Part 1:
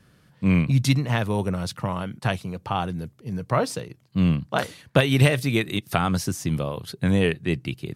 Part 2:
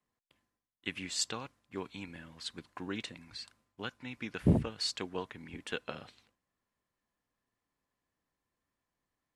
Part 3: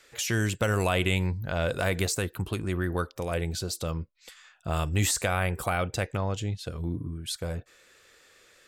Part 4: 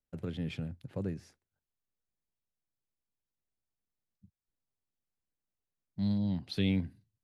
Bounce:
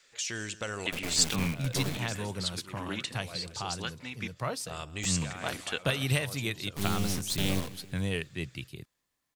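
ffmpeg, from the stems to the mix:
-filter_complex "[0:a]asubboost=boost=2:cutoff=120,adelay=900,volume=-12.5dB[a];[1:a]volume=0dB,asplit=3[b][c][d];[b]atrim=end=4.28,asetpts=PTS-STARTPTS,afade=t=out:st=4.276:d=0.004:c=hsin[e];[c]atrim=start=4.28:end=5.22,asetpts=PTS-STARTPTS,volume=0[f];[d]atrim=start=5.22,asetpts=PTS-STARTPTS,afade=t=in:d=0.004:c=hsin[g];[e][f][g]concat=n=3:v=0:a=1,asplit=2[h][i];[2:a]lowpass=f=7.7k:w=0.5412,lowpass=f=7.7k:w=1.3066,equalizer=f=78:w=0.56:g=-7.5,volume=-10dB,asplit=2[j][k];[k]volume=-18.5dB[l];[3:a]acompressor=mode=upward:threshold=-34dB:ratio=2.5,acrusher=bits=4:dc=4:mix=0:aa=0.000001,adelay=800,volume=1.5dB,asplit=2[m][n];[n]volume=-18.5dB[o];[i]apad=whole_len=382610[p];[j][p]sidechaincompress=threshold=-45dB:ratio=8:attack=7.8:release=555[q];[l][o]amix=inputs=2:normalize=0,aecho=0:1:166|332|498|664|830|996|1162:1|0.51|0.26|0.133|0.0677|0.0345|0.0176[r];[a][h][q][m][r]amix=inputs=5:normalize=0,highshelf=f=2.4k:g=10"

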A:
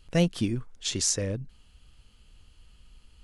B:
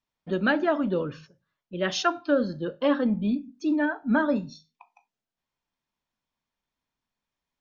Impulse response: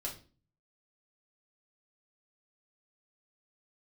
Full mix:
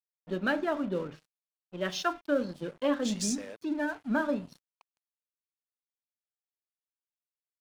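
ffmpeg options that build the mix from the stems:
-filter_complex "[0:a]highpass=600,dynaudnorm=f=350:g=3:m=11dB,adelay=2200,volume=-9.5dB,afade=t=in:st=2.79:d=0.21:silence=0.354813,asplit=2[a][b];[b]volume=-19.5dB[c];[1:a]bandreject=f=50:t=h:w=6,bandreject=f=100:t=h:w=6,bandreject=f=150:t=h:w=6,volume=-6dB,asplit=3[d][e][f];[e]volume=-12dB[g];[f]apad=whole_len=239800[h];[a][h]sidechaincompress=threshold=-37dB:ratio=4:attack=16:release=183[i];[2:a]atrim=start_sample=2205[j];[c][g]amix=inputs=2:normalize=0[k];[k][j]afir=irnorm=-1:irlink=0[l];[i][d][l]amix=inputs=3:normalize=0,aeval=exprs='sgn(val(0))*max(abs(val(0))-0.00398,0)':c=same"

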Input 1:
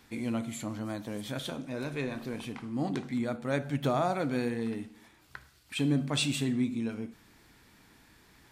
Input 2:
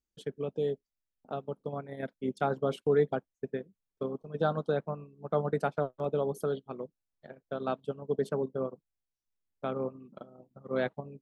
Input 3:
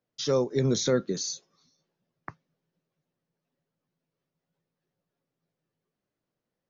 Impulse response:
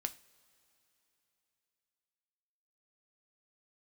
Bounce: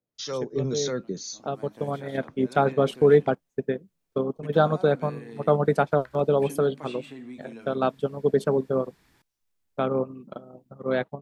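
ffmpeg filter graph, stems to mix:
-filter_complex "[0:a]acrossover=split=260|2900[a][b][c];[a]acompressor=threshold=-52dB:ratio=4[d];[b]acompressor=threshold=-35dB:ratio=4[e];[c]acompressor=threshold=-57dB:ratio=4[f];[d][e][f]amix=inputs=3:normalize=0,adelay=700,volume=-4dB,asplit=3[g][h][i];[g]atrim=end=3.35,asetpts=PTS-STARTPTS,afade=t=out:st=3.346:d=0.004:c=hsin[j];[h]atrim=start=3.35:end=4.43,asetpts=PTS-STARTPTS,volume=0[k];[i]atrim=start=4.43,asetpts=PTS-STARTPTS,afade=t=in:d=0.004:c=hsin[l];[j][k][l]concat=n=3:v=0:a=1[m];[1:a]dynaudnorm=f=500:g=5:m=7.5dB,adelay=150,volume=1dB[n];[2:a]acrossover=split=640[o][p];[o]aeval=exprs='val(0)*(1-0.7/2+0.7/2*cos(2*PI*1.8*n/s))':c=same[q];[p]aeval=exprs='val(0)*(1-0.7/2-0.7/2*cos(2*PI*1.8*n/s))':c=same[r];[q][r]amix=inputs=2:normalize=0,volume=-1dB,asplit=2[s][t];[t]apad=whole_len=406562[u];[m][u]sidechaincompress=threshold=-46dB:ratio=6:attack=6.7:release=459[v];[v][n][s]amix=inputs=3:normalize=0"

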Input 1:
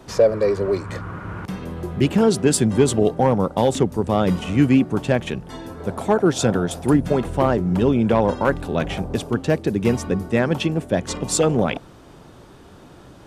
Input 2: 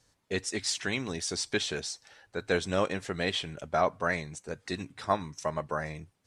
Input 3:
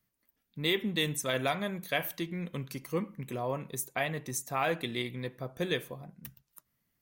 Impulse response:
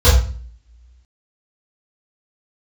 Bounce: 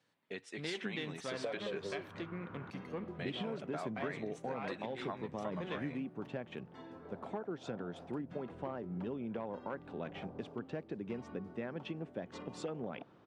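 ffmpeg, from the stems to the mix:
-filter_complex "[0:a]adelay=1250,volume=-15.5dB[a];[1:a]highpass=f=140:w=0.5412,highpass=f=140:w=1.3066,highshelf=f=4.3k:t=q:w=1.5:g=-10.5,acompressor=threshold=-37dB:ratio=3,volume=-6dB,asplit=3[b][c][d];[b]atrim=end=2.08,asetpts=PTS-STARTPTS,afade=t=out:st=2.076:d=0.004:c=hsin[e];[c]atrim=start=2.08:end=3.19,asetpts=PTS-STARTPTS,volume=0[f];[d]atrim=start=3.19,asetpts=PTS-STARTPTS,afade=t=in:d=0.004:c=hsin[g];[e][f][g]concat=n=3:v=0:a=1[h];[2:a]aeval=exprs='if(lt(val(0),0),0.447*val(0),val(0))':c=same,volume=-3dB[i];[a][i]amix=inputs=2:normalize=0,highpass=150,lowpass=2.9k,acompressor=threshold=-37dB:ratio=6,volume=0dB[j];[h][j]amix=inputs=2:normalize=0"

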